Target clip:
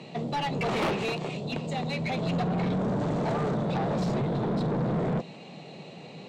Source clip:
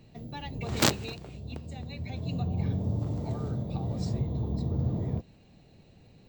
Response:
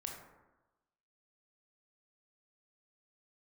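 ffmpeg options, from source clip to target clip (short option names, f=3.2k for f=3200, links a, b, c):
-filter_complex "[0:a]highpass=f=140:w=0.5412,highpass=f=140:w=1.3066,equalizer=f=160:t=q:w=4:g=7,equalizer=f=290:t=q:w=4:g=-3,equalizer=f=1.6k:t=q:w=4:g=-9,equalizer=f=5.1k:t=q:w=4:g=-4,lowpass=f=9.5k:w=0.5412,lowpass=f=9.5k:w=1.3066,acrossover=split=3000[a][b];[b]acompressor=threshold=-54dB:ratio=4:attack=1:release=60[c];[a][c]amix=inputs=2:normalize=0,asplit=2[d][e];[e]highpass=f=720:p=1,volume=36dB,asoftclip=type=tanh:threshold=-11.5dB[f];[d][f]amix=inputs=2:normalize=0,lowpass=f=2.5k:p=1,volume=-6dB,volume=-7.5dB"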